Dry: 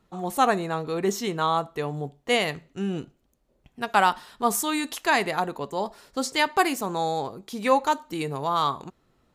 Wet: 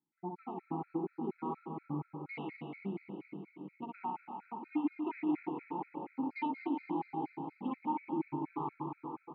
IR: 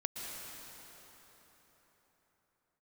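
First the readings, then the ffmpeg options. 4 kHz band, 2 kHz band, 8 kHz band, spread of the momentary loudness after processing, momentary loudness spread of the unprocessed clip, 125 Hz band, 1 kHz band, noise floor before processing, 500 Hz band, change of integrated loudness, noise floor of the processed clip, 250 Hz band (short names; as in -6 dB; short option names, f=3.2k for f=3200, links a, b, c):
under -30 dB, -22.5 dB, under -40 dB, 9 LU, 9 LU, -11.0 dB, -15.5 dB, -68 dBFS, -17.5 dB, -14.0 dB, -71 dBFS, -6.0 dB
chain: -filter_complex "[0:a]aemphasis=mode=reproduction:type=75fm,afwtdn=0.02,equalizer=f=150:w=5.8:g=13,acompressor=threshold=-25dB:ratio=6,asplit=3[a][b][c];[a]bandpass=f=300:t=q:w=8,volume=0dB[d];[b]bandpass=f=870:t=q:w=8,volume=-6dB[e];[c]bandpass=f=2.24k:t=q:w=8,volume=-9dB[f];[d][e][f]amix=inputs=3:normalize=0,asplit=5[g][h][i][j][k];[h]adelay=423,afreqshift=83,volume=-17.5dB[l];[i]adelay=846,afreqshift=166,volume=-23.5dB[m];[j]adelay=1269,afreqshift=249,volume=-29.5dB[n];[k]adelay=1692,afreqshift=332,volume=-35.6dB[o];[g][l][m][n][o]amix=inputs=5:normalize=0,asplit=2[p][q];[1:a]atrim=start_sample=2205,adelay=61[r];[q][r]afir=irnorm=-1:irlink=0,volume=-1.5dB[s];[p][s]amix=inputs=2:normalize=0,aresample=11025,aresample=44100,afftfilt=real='re*gt(sin(2*PI*4.2*pts/sr)*(1-2*mod(floor(b*sr/1024/1300),2)),0)':imag='im*gt(sin(2*PI*4.2*pts/sr)*(1-2*mod(floor(b*sr/1024/1300),2)),0)':win_size=1024:overlap=0.75,volume=2.5dB"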